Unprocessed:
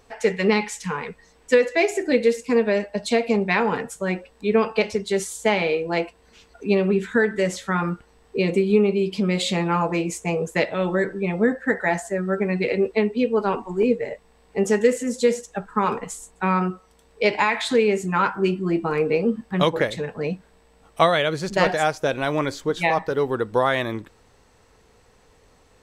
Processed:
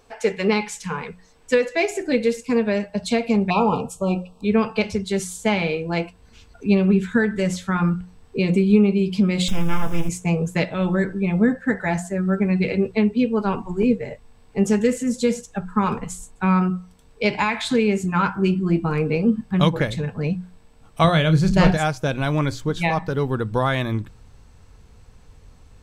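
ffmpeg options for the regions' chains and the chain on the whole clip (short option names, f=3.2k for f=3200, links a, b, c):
-filter_complex "[0:a]asettb=1/sr,asplit=3[a][b][c];[a]atrim=end=3.504[d];[b]atrim=start=3.5:end=4.45,asetpts=PTS-STARTPTS,afade=t=in:d=0.004:c=qsin,afade=t=out:st=0.946:d=0.004:c=qsin,asuperstop=centerf=1800:order=20:qfactor=1.7,equalizer=f=700:t=o:w=1.8:g=6[e];[c]atrim=start=4.446[f];[d][e]acrossfade=d=0.004:c1=hsin:c2=qsin[g];[g][f]acrossfade=d=0.004:c1=qsin:c2=hsin,asettb=1/sr,asplit=3[h][i][j];[h]atrim=end=9.484[k];[i]atrim=start=9.48:end=10.09,asetpts=PTS-STARTPTS,afade=t=in:d=0.004:c=qsin,afade=t=out:st=0.606:d=0.004:c=qsin,acrusher=bits=4:dc=4:mix=0:aa=0.000001,aeval=exprs='max(val(0),0)':c=same,asuperstop=centerf=4300:order=8:qfactor=3.8[l];[j]atrim=start=10.086[m];[k][l]acrossfade=d=0.004:c1=hsin:c2=qsin[n];[n][m]acrossfade=d=0.004:c1=qsin:c2=hsin,asettb=1/sr,asplit=3[o][p][q];[o]atrim=end=21.044[r];[p]atrim=start=21.04:end=21.77,asetpts=PTS-STARTPTS,afade=t=in:d=0.004:c=qsin,afade=t=out:st=0.726:d=0.004:c=qsin,lowshelf=f=230:g=8.5,asplit=2[s][t];[t]adelay=31,volume=-10dB[u];[s][u]amix=inputs=2:normalize=0,atrim=end_sample=32193[v];[q]atrim=start=21.766[w];[r][v]acrossfade=d=0.004:c1=hsin:c2=qsin[x];[x][w]acrossfade=d=0.004:c1=qsin:c2=hsin,bandreject=f=1.9k:w=13,asubboost=boost=5:cutoff=180,bandreject=f=60:t=h:w=6,bandreject=f=120:t=h:w=6,bandreject=f=180:t=h:w=6"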